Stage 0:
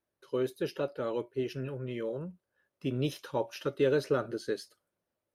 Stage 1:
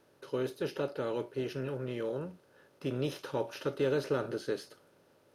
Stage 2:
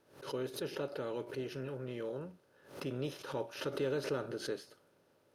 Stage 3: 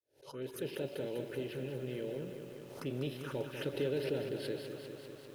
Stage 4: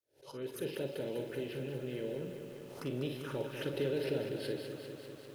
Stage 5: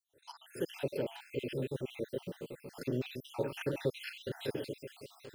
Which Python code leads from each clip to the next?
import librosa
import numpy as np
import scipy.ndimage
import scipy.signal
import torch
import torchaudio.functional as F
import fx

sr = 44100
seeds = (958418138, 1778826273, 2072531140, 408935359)

y1 = fx.bin_compress(x, sr, power=0.6)
y1 = y1 * librosa.db_to_amplitude(-5.0)
y2 = fx.pre_swell(y1, sr, db_per_s=120.0)
y2 = y2 * librosa.db_to_amplitude(-5.0)
y3 = fx.fade_in_head(y2, sr, length_s=0.6)
y3 = fx.env_phaser(y3, sr, low_hz=190.0, high_hz=1200.0, full_db=-37.0)
y3 = fx.echo_crushed(y3, sr, ms=197, feedback_pct=80, bits=10, wet_db=-8.0)
y3 = y3 * librosa.db_to_amplitude(1.5)
y4 = fx.room_early_taps(y3, sr, ms=(44, 57), db=(-10.0, -11.5))
y5 = fx.spec_dropout(y4, sr, seeds[0], share_pct=60)
y5 = y5 * librosa.db_to_amplitude(4.5)